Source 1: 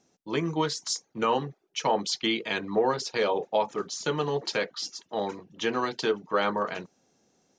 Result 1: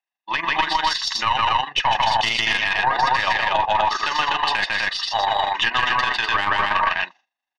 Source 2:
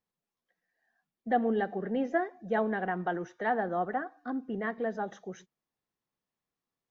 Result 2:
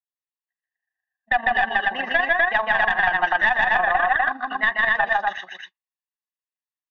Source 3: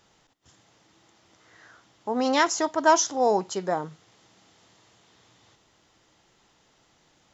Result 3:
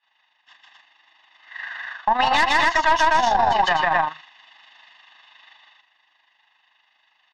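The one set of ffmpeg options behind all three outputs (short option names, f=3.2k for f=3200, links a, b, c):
-af "highpass=1.4k,agate=range=-33dB:threshold=-54dB:ratio=3:detection=peak,lowpass=f=3.3k:w=0.5412,lowpass=f=3.3k:w=1.3066,aecho=1:1:1.1:0.82,aecho=1:1:148.7|250.7:0.891|0.794,aeval=exprs='(tanh(10*val(0)+0.7)-tanh(0.7))/10':c=same,tremolo=f=25:d=0.519,acompressor=threshold=-41dB:ratio=2,alimiter=level_in=32.5dB:limit=-1dB:release=50:level=0:latency=1,volume=-6.5dB"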